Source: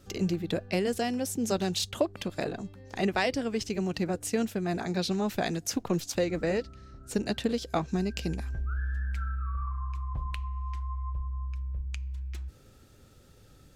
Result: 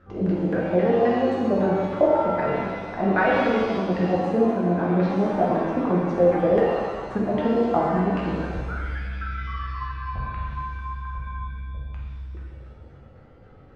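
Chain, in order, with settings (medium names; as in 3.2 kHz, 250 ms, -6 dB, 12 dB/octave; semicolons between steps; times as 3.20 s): LFO low-pass saw down 3.8 Hz 450–1700 Hz; pitch-shifted reverb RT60 1.5 s, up +7 st, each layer -8 dB, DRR -4.5 dB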